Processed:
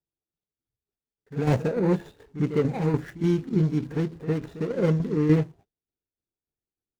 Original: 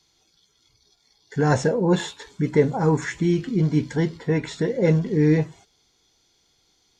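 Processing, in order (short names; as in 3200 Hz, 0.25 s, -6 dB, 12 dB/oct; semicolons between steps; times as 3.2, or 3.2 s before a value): median filter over 41 samples; gate with hold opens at -45 dBFS; reverse echo 56 ms -14 dB; tremolo saw down 3.4 Hz, depth 55%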